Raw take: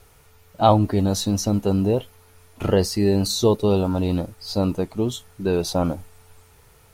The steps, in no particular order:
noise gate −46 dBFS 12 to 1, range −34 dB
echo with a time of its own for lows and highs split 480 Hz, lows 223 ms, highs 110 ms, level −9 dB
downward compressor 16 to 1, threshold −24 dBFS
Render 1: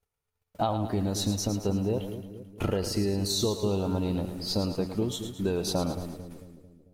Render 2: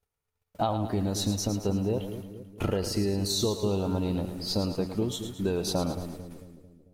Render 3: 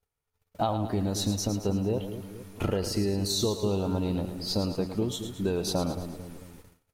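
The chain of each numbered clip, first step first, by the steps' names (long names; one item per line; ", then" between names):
downward compressor, then noise gate, then echo with a time of its own for lows and highs
noise gate, then downward compressor, then echo with a time of its own for lows and highs
downward compressor, then echo with a time of its own for lows and highs, then noise gate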